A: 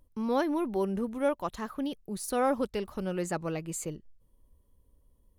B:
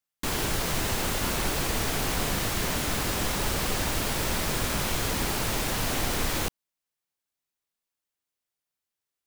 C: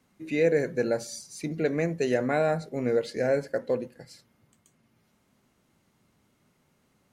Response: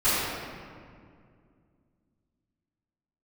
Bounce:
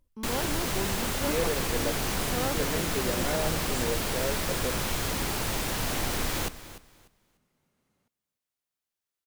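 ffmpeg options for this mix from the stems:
-filter_complex "[0:a]volume=-6.5dB[link_01];[1:a]volume=-2dB,asplit=2[link_02][link_03];[link_03]volume=-15dB[link_04];[2:a]adelay=950,volume=-7.5dB,asplit=2[link_05][link_06];[link_06]volume=-21dB[link_07];[link_04][link_07]amix=inputs=2:normalize=0,aecho=0:1:296|592|888|1184:1|0.22|0.0484|0.0106[link_08];[link_01][link_02][link_05][link_08]amix=inputs=4:normalize=0"

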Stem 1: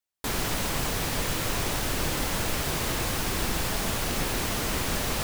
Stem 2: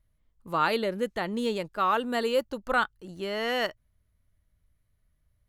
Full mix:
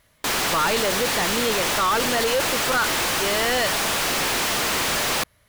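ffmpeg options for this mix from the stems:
ffmpeg -i stem1.wav -i stem2.wav -filter_complex "[0:a]volume=-6dB[link_01];[1:a]volume=-3dB[link_02];[link_01][link_02]amix=inputs=2:normalize=0,asplit=2[link_03][link_04];[link_04]highpass=frequency=720:poles=1,volume=34dB,asoftclip=type=tanh:threshold=-14.5dB[link_05];[link_03][link_05]amix=inputs=2:normalize=0,lowpass=frequency=6300:poles=1,volume=-6dB" out.wav

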